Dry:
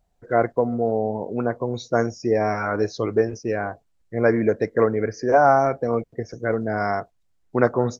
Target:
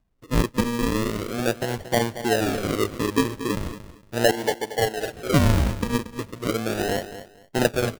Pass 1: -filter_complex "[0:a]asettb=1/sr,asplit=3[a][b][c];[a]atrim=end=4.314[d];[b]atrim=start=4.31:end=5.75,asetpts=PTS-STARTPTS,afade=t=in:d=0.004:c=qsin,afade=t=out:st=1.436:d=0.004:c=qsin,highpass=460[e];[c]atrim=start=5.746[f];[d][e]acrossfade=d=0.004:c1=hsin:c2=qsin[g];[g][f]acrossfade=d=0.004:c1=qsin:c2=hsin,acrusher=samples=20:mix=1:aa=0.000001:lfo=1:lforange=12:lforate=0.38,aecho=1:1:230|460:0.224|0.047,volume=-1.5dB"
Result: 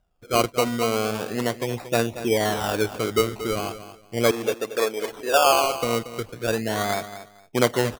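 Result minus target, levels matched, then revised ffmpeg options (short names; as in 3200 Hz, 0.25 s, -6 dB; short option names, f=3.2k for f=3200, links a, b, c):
decimation with a swept rate: distortion -19 dB
-filter_complex "[0:a]asettb=1/sr,asplit=3[a][b][c];[a]atrim=end=4.314[d];[b]atrim=start=4.31:end=5.75,asetpts=PTS-STARTPTS,afade=t=in:d=0.004:c=qsin,afade=t=out:st=1.436:d=0.004:c=qsin,highpass=460[e];[c]atrim=start=5.746[f];[d][e]acrossfade=d=0.004:c1=hsin:c2=qsin[g];[g][f]acrossfade=d=0.004:c1=qsin:c2=hsin,acrusher=samples=48:mix=1:aa=0.000001:lfo=1:lforange=28.8:lforate=0.38,aecho=1:1:230|460:0.224|0.047,volume=-1.5dB"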